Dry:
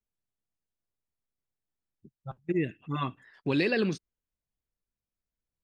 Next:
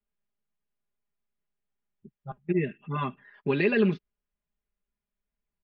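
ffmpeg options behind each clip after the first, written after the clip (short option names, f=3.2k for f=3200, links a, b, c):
-af "lowpass=f=3k:w=0.5412,lowpass=f=3k:w=1.3066,aecho=1:1:4.9:0.98"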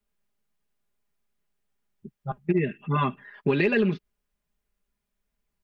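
-filter_complex "[0:a]asplit=2[a][b];[b]aeval=exprs='clip(val(0),-1,0.1)':c=same,volume=-4dB[c];[a][c]amix=inputs=2:normalize=0,acompressor=threshold=-22dB:ratio=6,volume=3dB"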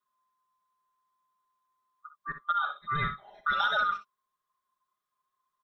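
-af "afftfilt=real='real(if(lt(b,960),b+48*(1-2*mod(floor(b/48),2)),b),0)':imag='imag(if(lt(b,960),b+48*(1-2*mod(floor(b/48),2)),b),0)':win_size=2048:overlap=0.75,aecho=1:1:49|63:0.188|0.299,volume=-5.5dB"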